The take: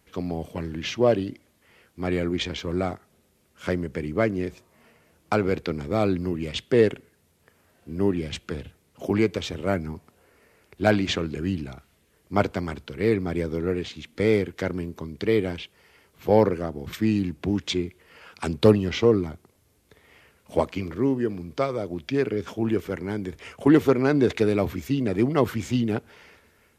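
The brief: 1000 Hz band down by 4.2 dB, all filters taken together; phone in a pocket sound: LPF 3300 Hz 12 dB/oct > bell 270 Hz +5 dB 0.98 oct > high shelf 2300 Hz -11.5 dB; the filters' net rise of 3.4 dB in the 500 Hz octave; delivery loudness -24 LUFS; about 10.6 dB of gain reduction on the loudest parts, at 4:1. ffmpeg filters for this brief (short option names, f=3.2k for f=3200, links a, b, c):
-af "equalizer=f=500:t=o:g=4,equalizer=f=1k:t=o:g=-6.5,acompressor=threshold=-23dB:ratio=4,lowpass=3.3k,equalizer=f=270:t=o:w=0.98:g=5,highshelf=f=2.3k:g=-11.5,volume=3.5dB"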